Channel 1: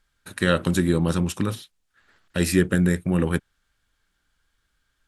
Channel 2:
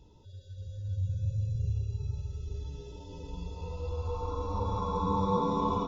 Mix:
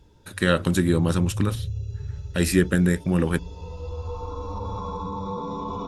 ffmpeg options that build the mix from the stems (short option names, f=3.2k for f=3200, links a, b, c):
-filter_complex "[0:a]volume=0dB[a];[1:a]alimiter=level_in=1dB:limit=-24dB:level=0:latency=1:release=26,volume=-1dB,volume=2dB[b];[a][b]amix=inputs=2:normalize=0"